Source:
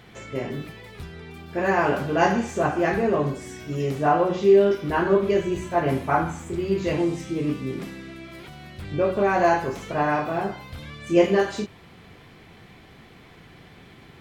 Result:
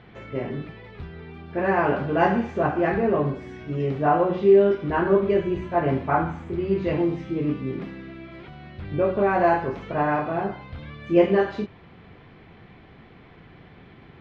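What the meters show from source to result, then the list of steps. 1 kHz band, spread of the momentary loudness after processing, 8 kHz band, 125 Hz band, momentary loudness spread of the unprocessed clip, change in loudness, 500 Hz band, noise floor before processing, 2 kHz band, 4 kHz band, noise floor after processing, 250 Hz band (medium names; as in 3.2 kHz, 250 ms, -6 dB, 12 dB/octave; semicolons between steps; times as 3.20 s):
-0.5 dB, 20 LU, under -20 dB, +1.0 dB, 20 LU, 0.0 dB, 0.0 dB, -49 dBFS, -1.5 dB, no reading, -49 dBFS, +0.5 dB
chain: distance through air 320 m; trim +1 dB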